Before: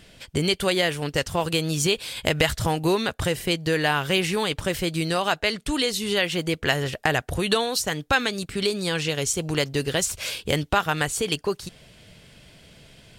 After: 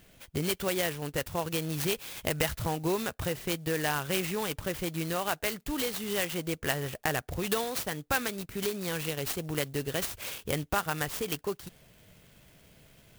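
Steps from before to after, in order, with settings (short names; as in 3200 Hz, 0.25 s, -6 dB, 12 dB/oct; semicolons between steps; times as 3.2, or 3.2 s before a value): clock jitter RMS 0.051 ms; gain -7.5 dB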